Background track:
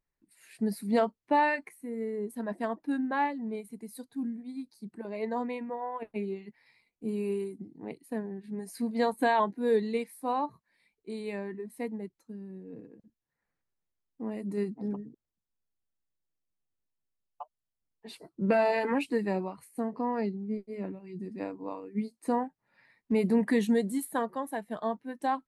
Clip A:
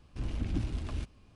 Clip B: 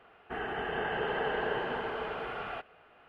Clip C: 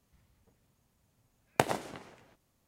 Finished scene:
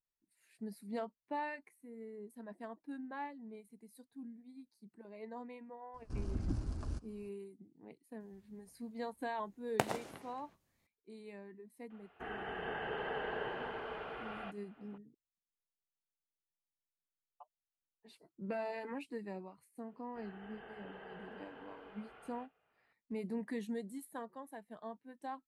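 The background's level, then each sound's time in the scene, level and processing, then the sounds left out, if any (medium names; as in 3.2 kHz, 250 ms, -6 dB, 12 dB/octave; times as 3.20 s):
background track -14.5 dB
5.94 s: add A -4.5 dB + high-order bell 2.7 kHz -12 dB 1.2 oct
8.20 s: add C -6 dB
11.90 s: add B -7.5 dB
19.85 s: add B -17 dB + feedback comb 50 Hz, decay 0.2 s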